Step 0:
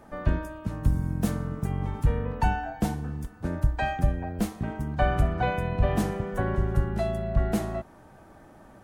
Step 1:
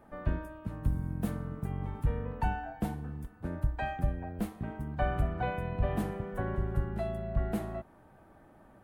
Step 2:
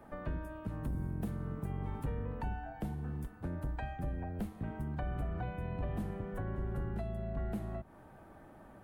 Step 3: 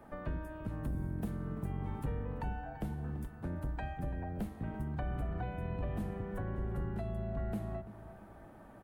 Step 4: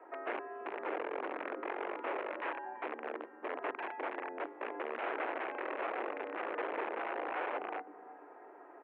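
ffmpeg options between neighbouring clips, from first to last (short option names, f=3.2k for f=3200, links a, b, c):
-af "equalizer=f=6k:w=1.1:g=-10,volume=-6.5dB"
-filter_complex "[0:a]acrossover=split=190[a][b];[a]asoftclip=type=tanh:threshold=-36.5dB[c];[b]acompressor=threshold=-44dB:ratio=12[d];[c][d]amix=inputs=2:normalize=0,volume=2.5dB"
-filter_complex "[0:a]asplit=2[a][b];[b]adelay=337,lowpass=f=2k:p=1,volume=-13dB,asplit=2[c][d];[d]adelay=337,lowpass=f=2k:p=1,volume=0.43,asplit=2[e][f];[f]adelay=337,lowpass=f=2k:p=1,volume=0.43,asplit=2[g][h];[h]adelay=337,lowpass=f=2k:p=1,volume=0.43[i];[a][c][e][g][i]amix=inputs=5:normalize=0"
-af "aeval=exprs='(mod(44.7*val(0)+1,2)-1)/44.7':c=same,highpass=f=250:t=q:w=0.5412,highpass=f=250:t=q:w=1.307,lowpass=f=2.5k:t=q:w=0.5176,lowpass=f=2.5k:t=q:w=0.7071,lowpass=f=2.5k:t=q:w=1.932,afreqshift=89,aemphasis=mode=reproduction:type=50fm,volume=2dB"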